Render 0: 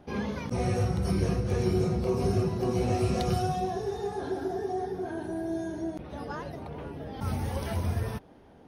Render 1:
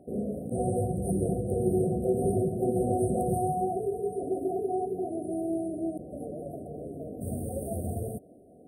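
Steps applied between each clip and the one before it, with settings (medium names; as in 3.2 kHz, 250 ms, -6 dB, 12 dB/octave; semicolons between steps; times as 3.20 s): frequency weighting D; FFT band-reject 760–8100 Hz; trim +2.5 dB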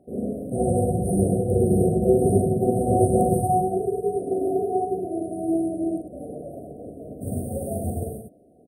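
multi-tap echo 42/103 ms -5/-3.5 dB; upward expansion 1.5:1, over -42 dBFS; trim +7 dB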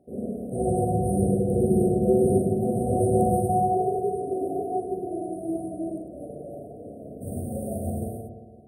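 reverberation RT60 1.6 s, pre-delay 55 ms, DRR 3 dB; trim -4 dB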